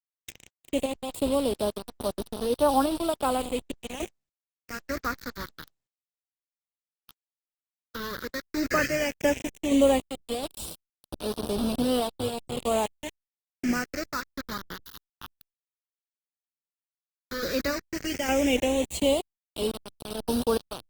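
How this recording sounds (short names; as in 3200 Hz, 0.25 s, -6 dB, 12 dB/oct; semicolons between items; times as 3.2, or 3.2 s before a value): random-step tremolo, depth 80%; a quantiser's noise floor 6-bit, dither none; phasing stages 6, 0.11 Hz, lowest notch 540–2000 Hz; Opus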